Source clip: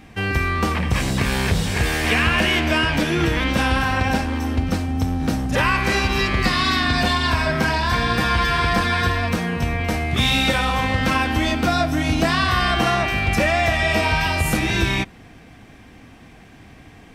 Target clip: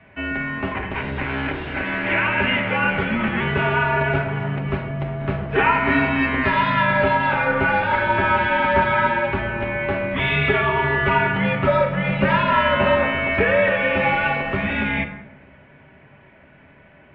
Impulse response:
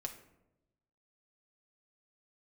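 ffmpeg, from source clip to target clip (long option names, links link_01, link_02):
-filter_complex "[0:a]dynaudnorm=framelen=360:gausssize=17:maxgain=5.5dB[link_01];[1:a]atrim=start_sample=2205,asetrate=36603,aresample=44100[link_02];[link_01][link_02]afir=irnorm=-1:irlink=0,highpass=frequency=240:width_type=q:width=0.5412,highpass=frequency=240:width_type=q:width=1.307,lowpass=frequency=2900:width_type=q:width=0.5176,lowpass=frequency=2900:width_type=q:width=0.7071,lowpass=frequency=2900:width_type=q:width=1.932,afreqshift=-120"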